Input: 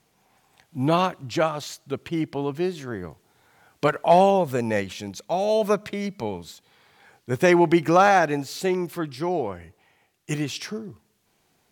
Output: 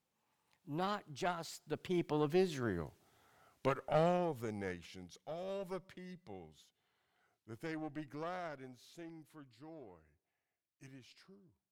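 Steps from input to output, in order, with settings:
one-sided soft clipper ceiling −19.5 dBFS
source passing by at 0:02.52, 38 m/s, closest 20 metres
level −5 dB

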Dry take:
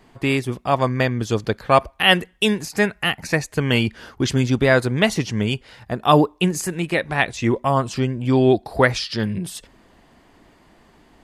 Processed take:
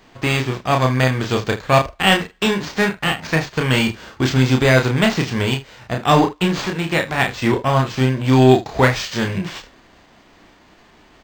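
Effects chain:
spectral envelope flattened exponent 0.6
soft clipping −6.5 dBFS, distortion −18 dB
on a send: ambience of single reflections 31 ms −4 dB, 75 ms −16 dB
on the sum: linearly interpolated sample-rate reduction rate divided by 4×
level +2 dB

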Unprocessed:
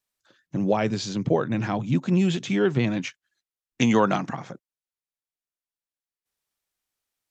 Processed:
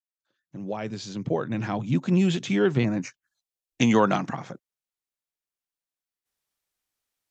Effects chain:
fade in at the beginning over 2.18 s
0:02.83–0:03.81: phaser swept by the level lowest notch 190 Hz, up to 3,300 Hz, full sweep at −27 dBFS

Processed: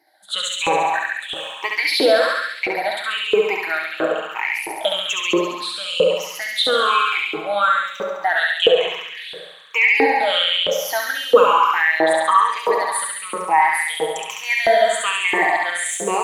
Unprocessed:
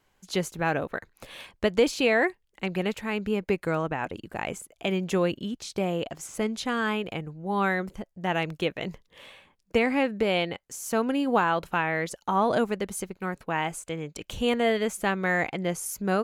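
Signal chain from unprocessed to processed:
rippled gain that drifts along the octave scale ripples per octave 0.76, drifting −1.1 Hz, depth 23 dB
parametric band 3,600 Hz +6.5 dB 0.4 octaves
flutter between parallel walls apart 11.8 metres, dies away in 1.5 s
on a send at −4.5 dB: convolution reverb RT60 0.80 s, pre-delay 6 ms
on the sum: auto-filter high-pass saw up 1.5 Hz 400–2,900 Hz
in parallel at −2 dB: brickwall limiter −9 dBFS, peak gain reduction 11.5 dB
on the sum: level −5.5 dB

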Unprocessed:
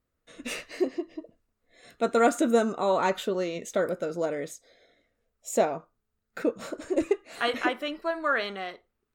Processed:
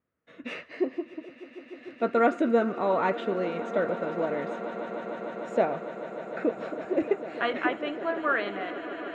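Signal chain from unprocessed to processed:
Chebyshev band-pass filter 130–2,200 Hz, order 2
on a send: echo that builds up and dies away 150 ms, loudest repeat 8, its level −17.5 dB

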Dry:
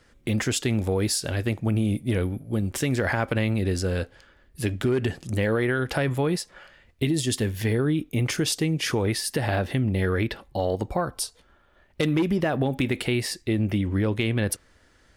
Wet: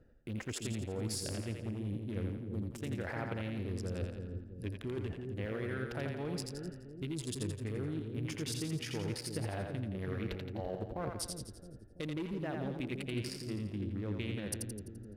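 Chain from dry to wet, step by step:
adaptive Wiener filter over 41 samples
reversed playback
downward compressor 5 to 1, threshold −40 dBFS, peak gain reduction 17.5 dB
reversed playback
echo with a time of its own for lows and highs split 440 Hz, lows 333 ms, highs 85 ms, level −4 dB
level +1 dB

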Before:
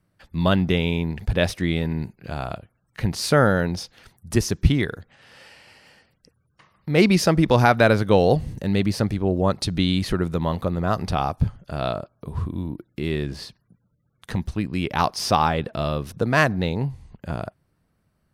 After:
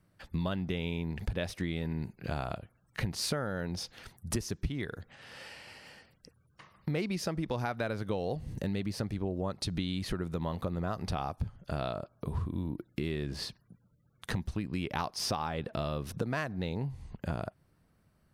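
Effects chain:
downward compressor 10 to 1, threshold −30 dBFS, peak gain reduction 20 dB

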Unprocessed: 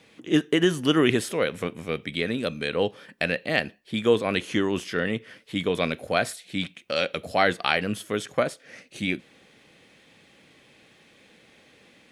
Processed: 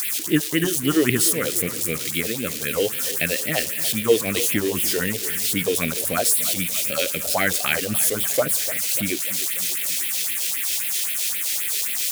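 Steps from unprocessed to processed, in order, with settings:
spike at every zero crossing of −17.5 dBFS
all-pass phaser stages 4, 3.8 Hz, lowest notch 140–1,100 Hz
feedback echo with a swinging delay time 294 ms, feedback 58%, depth 94 cents, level −14.5 dB
level +3.5 dB

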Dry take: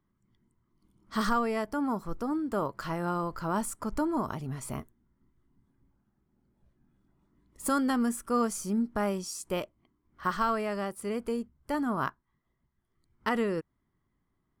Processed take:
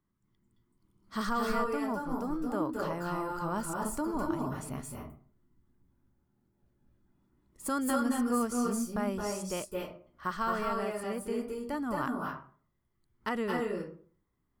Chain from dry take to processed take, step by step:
on a send: high-shelf EQ 8,600 Hz +12 dB + convolution reverb RT60 0.45 s, pre-delay 214 ms, DRR 0.5 dB
on the sum: level −4.5 dB

